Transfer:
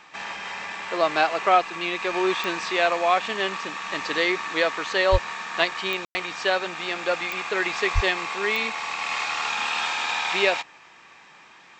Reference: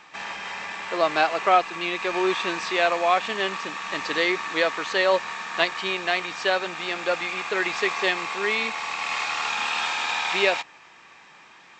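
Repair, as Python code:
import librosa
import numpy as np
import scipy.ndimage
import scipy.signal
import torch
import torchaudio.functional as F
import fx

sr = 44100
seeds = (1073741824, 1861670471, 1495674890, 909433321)

y = fx.fix_declick_ar(x, sr, threshold=10.0)
y = fx.highpass(y, sr, hz=140.0, slope=24, at=(5.11, 5.23), fade=0.02)
y = fx.highpass(y, sr, hz=140.0, slope=24, at=(7.94, 8.06), fade=0.02)
y = fx.fix_ambience(y, sr, seeds[0], print_start_s=11.2, print_end_s=11.7, start_s=6.05, end_s=6.15)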